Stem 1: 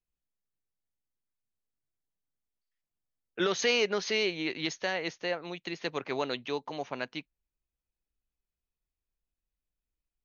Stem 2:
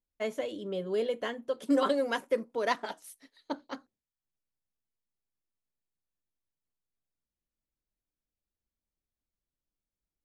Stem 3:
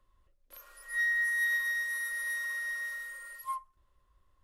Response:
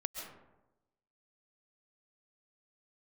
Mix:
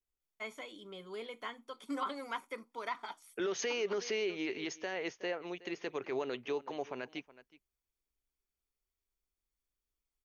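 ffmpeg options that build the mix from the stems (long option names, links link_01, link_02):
-filter_complex "[0:a]equalizer=frequency=160:width_type=o:width=0.33:gain=-8,equalizer=frequency=400:width_type=o:width=0.33:gain=7,equalizer=frequency=4000:width_type=o:width=0.33:gain=-9,volume=-3.5dB,asplit=2[link_01][link_02];[link_02]volume=-21dB[link_03];[1:a]acrossover=split=3000[link_04][link_05];[link_05]acompressor=threshold=-56dB:ratio=4:attack=1:release=60[link_06];[link_04][link_06]amix=inputs=2:normalize=0,highpass=frequency=1100:poles=1,aecho=1:1:0.9:0.63,adelay=200,volume=-2dB[link_07];[link_03]aecho=0:1:369:1[link_08];[link_01][link_07][link_08]amix=inputs=3:normalize=0,alimiter=level_in=2.5dB:limit=-24dB:level=0:latency=1:release=42,volume=-2.5dB"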